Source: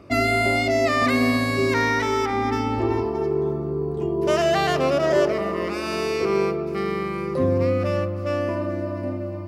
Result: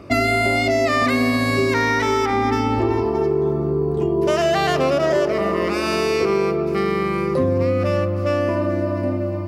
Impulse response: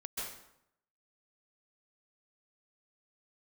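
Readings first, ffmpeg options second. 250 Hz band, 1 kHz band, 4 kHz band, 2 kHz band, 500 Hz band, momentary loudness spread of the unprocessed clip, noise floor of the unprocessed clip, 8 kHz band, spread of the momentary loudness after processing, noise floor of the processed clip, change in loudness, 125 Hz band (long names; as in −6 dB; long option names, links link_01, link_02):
+3.0 dB, +3.0 dB, +2.5 dB, +2.5 dB, +3.0 dB, 7 LU, −29 dBFS, +2.5 dB, 3 LU, −23 dBFS, +3.0 dB, +3.5 dB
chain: -af "acompressor=threshold=-22dB:ratio=4,volume=6.5dB"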